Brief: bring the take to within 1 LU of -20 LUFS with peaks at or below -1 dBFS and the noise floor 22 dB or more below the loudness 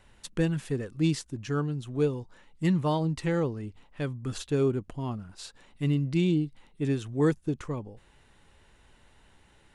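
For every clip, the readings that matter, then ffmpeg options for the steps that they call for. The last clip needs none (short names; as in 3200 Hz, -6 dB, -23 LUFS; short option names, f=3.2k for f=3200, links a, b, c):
loudness -29.5 LUFS; peak -14.0 dBFS; loudness target -20.0 LUFS
-> -af "volume=9.5dB"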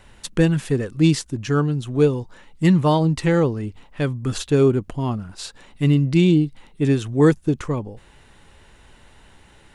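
loudness -20.0 LUFS; peak -4.5 dBFS; noise floor -51 dBFS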